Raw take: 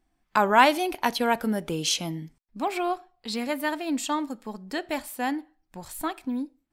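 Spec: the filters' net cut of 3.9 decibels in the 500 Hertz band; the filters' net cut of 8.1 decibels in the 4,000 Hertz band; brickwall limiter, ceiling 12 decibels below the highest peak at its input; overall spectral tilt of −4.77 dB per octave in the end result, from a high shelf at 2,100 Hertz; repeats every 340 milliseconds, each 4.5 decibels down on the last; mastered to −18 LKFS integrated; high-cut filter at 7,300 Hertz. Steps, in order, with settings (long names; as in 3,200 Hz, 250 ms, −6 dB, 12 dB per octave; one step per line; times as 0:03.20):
low-pass filter 7,300 Hz
parametric band 500 Hz −5 dB
high-shelf EQ 2,100 Hz −3.5 dB
parametric band 4,000 Hz −7 dB
brickwall limiter −19.5 dBFS
repeating echo 340 ms, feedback 60%, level −4.5 dB
level +13 dB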